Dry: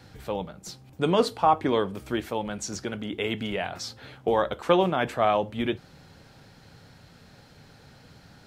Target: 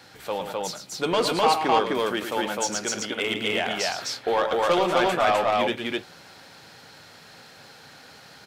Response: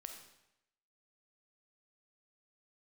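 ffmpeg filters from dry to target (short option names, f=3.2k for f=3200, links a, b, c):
-filter_complex "[0:a]highpass=f=720:p=1,asoftclip=type=tanh:threshold=-22dB,asplit=2[a][b];[b]aecho=0:1:110.8|256.6:0.398|0.891[c];[a][c]amix=inputs=2:normalize=0,volume=6.5dB"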